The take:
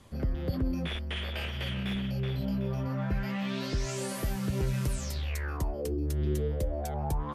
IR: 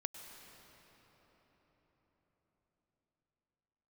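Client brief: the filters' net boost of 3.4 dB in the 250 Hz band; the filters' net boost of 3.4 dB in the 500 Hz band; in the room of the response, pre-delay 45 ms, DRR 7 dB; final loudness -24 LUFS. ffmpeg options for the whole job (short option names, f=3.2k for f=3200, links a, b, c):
-filter_complex "[0:a]equalizer=f=250:t=o:g=4,equalizer=f=500:t=o:g=3,asplit=2[a][b];[1:a]atrim=start_sample=2205,adelay=45[c];[b][c]afir=irnorm=-1:irlink=0,volume=-5.5dB[d];[a][d]amix=inputs=2:normalize=0,volume=5.5dB"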